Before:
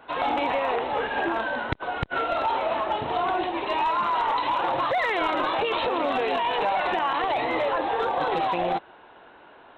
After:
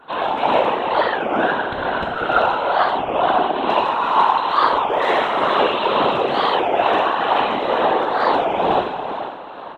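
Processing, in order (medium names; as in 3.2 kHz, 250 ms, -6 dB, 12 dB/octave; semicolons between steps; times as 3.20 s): Bessel high-pass 180 Hz; peaking EQ 2.1 kHz -7.5 dB 0.42 oct; plate-style reverb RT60 2.6 s, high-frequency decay 0.9×, DRR -3.5 dB; tremolo triangle 2.2 Hz, depth 50%; frequency-shifting echo 445 ms, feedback 58%, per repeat +61 Hz, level -17.5 dB; whisper effect; warped record 33 1/3 rpm, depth 250 cents; trim +5 dB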